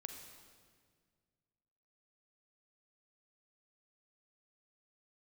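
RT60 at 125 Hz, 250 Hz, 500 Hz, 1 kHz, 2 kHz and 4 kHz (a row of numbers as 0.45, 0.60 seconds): 2.5, 2.2, 2.0, 1.7, 1.6, 1.5 seconds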